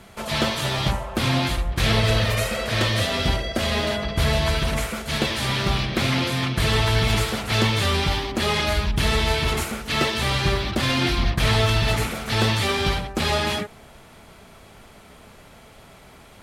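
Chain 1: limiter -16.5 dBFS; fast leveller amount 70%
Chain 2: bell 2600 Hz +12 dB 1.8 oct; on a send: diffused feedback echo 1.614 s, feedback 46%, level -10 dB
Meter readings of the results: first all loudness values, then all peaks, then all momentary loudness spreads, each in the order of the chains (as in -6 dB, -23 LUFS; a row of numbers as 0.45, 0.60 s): -23.0, -15.0 LUFS; -11.0, -2.0 dBFS; 7, 11 LU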